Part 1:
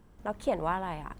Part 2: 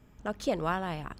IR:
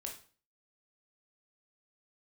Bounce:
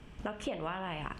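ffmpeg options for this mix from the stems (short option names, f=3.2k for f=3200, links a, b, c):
-filter_complex "[0:a]crystalizer=i=5:c=0,acompressor=threshold=-36dB:ratio=6,volume=0.5dB,asplit=2[a][b];[1:a]lowpass=f=3k:t=q:w=3.8,volume=1dB,asplit=2[c][d];[d]volume=-4.5dB[e];[b]apad=whole_len=52775[f];[c][f]sidechaincompress=threshold=-43dB:ratio=8:attack=16:release=938[g];[2:a]atrim=start_sample=2205[h];[e][h]afir=irnorm=-1:irlink=0[i];[a][g][i]amix=inputs=3:normalize=0,lowpass=4.8k,acompressor=threshold=-33dB:ratio=6"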